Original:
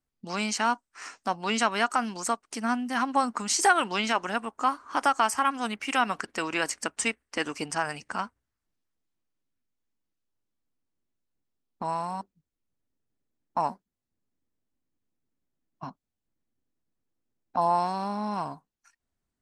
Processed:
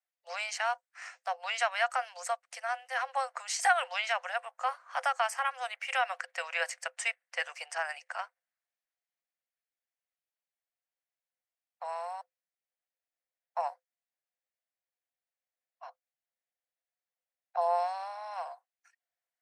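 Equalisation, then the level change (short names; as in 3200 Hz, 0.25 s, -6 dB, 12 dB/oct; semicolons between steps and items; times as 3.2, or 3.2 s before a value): rippled Chebyshev high-pass 500 Hz, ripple 9 dB; 0.0 dB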